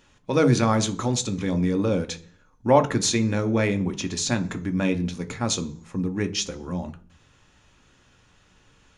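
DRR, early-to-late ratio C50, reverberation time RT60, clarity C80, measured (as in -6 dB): 7.0 dB, 17.0 dB, 0.45 s, 21.5 dB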